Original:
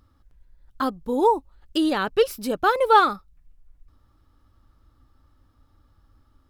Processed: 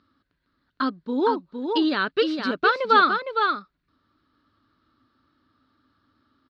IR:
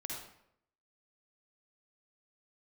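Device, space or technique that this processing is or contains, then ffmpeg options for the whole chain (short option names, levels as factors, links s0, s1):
kitchen radio: -af "highpass=200,equalizer=f=260:t=q:w=4:g=3,equalizer=f=510:t=q:w=4:g=-6,equalizer=f=810:t=q:w=4:g=-10,equalizer=f=1500:t=q:w=4:g=5,equalizer=f=4300:t=q:w=4:g=8,lowpass=f=4400:w=0.5412,lowpass=f=4400:w=1.3066,aecho=1:1:461:0.531"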